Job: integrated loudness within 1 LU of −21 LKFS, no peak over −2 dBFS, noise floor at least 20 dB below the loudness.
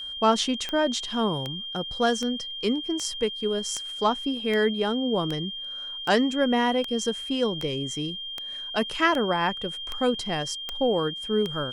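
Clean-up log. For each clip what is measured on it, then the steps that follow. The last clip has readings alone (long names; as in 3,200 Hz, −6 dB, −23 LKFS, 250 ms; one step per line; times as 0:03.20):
number of clicks 15; interfering tone 3,200 Hz; level of the tone −33 dBFS; integrated loudness −26.0 LKFS; sample peak −8.0 dBFS; target loudness −21.0 LKFS
→ click removal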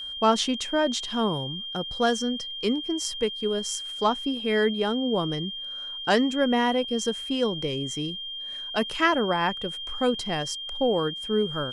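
number of clicks 0; interfering tone 3,200 Hz; level of the tone −33 dBFS
→ notch filter 3,200 Hz, Q 30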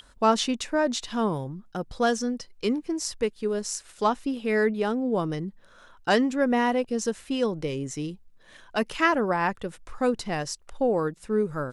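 interfering tone none found; integrated loudness −27.0 LKFS; sample peak −8.5 dBFS; target loudness −21.0 LKFS
→ level +6 dB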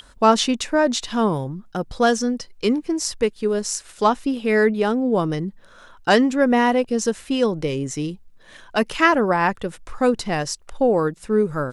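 integrated loudness −21.0 LKFS; sample peak −2.5 dBFS; background noise floor −49 dBFS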